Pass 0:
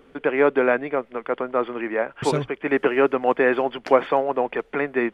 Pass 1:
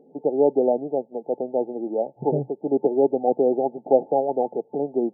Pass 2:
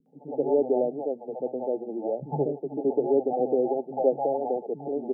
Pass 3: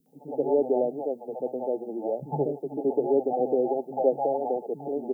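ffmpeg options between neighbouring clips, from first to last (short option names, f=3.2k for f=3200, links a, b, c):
-af "afftfilt=real='re*between(b*sr/4096,120,880)':imag='im*between(b*sr/4096,120,880)':win_size=4096:overlap=0.75"
-filter_complex "[0:a]acrossover=split=210|670[a][b][c];[c]adelay=60[d];[b]adelay=130[e];[a][e][d]amix=inputs=3:normalize=0,volume=-2dB"
-af "crystalizer=i=6:c=0,volume=-1dB"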